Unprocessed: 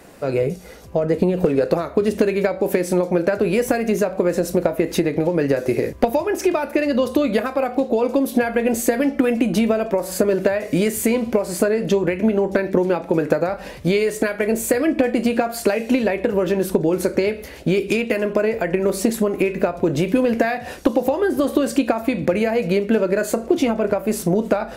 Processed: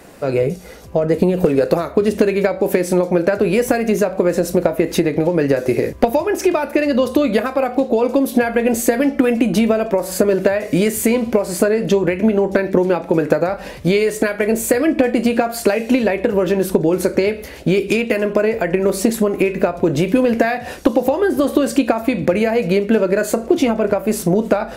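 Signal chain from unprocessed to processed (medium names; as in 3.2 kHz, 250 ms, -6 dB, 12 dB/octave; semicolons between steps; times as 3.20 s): 1.11–1.92 s: treble shelf 8.2 kHz +7 dB; trim +3 dB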